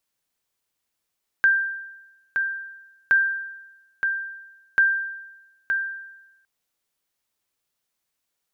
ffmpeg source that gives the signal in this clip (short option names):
-f lavfi -i "aevalsrc='0.266*(sin(2*PI*1580*mod(t,1.67))*exp(-6.91*mod(t,1.67)/1.01)+0.501*sin(2*PI*1580*max(mod(t,1.67)-0.92,0))*exp(-6.91*max(mod(t,1.67)-0.92,0)/1.01))':d=5.01:s=44100"